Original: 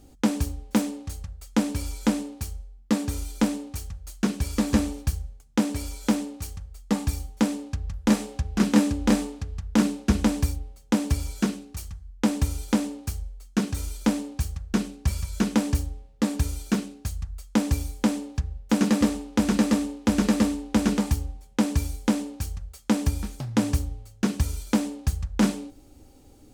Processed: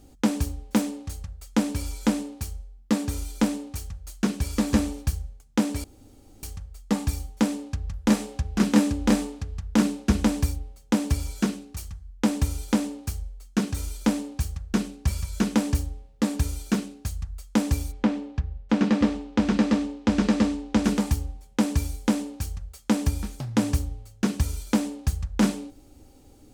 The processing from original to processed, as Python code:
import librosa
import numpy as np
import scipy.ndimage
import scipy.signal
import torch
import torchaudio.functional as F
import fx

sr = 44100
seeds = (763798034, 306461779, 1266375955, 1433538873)

y = fx.lowpass(x, sr, hz=fx.line((17.91, 2900.0), (20.83, 6400.0)), slope=12, at=(17.91, 20.83), fade=0.02)
y = fx.edit(y, sr, fx.room_tone_fill(start_s=5.84, length_s=0.59), tone=tone)